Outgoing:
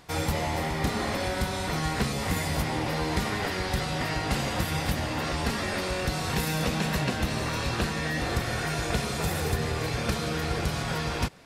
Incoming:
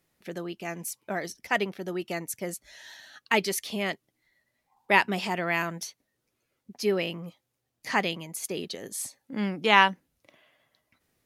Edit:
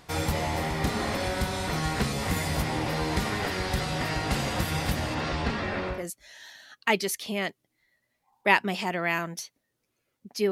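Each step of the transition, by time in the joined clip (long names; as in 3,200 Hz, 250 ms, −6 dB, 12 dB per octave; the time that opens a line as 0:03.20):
outgoing
0:05.14–0:06.06: low-pass filter 6,600 Hz → 1,700 Hz
0:05.97: continue with incoming from 0:02.41, crossfade 0.18 s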